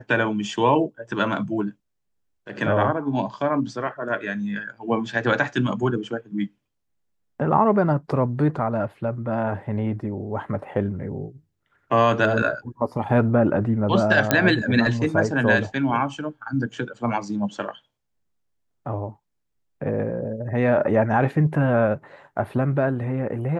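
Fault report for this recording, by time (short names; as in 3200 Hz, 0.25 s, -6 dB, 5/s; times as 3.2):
14.31 pop -2 dBFS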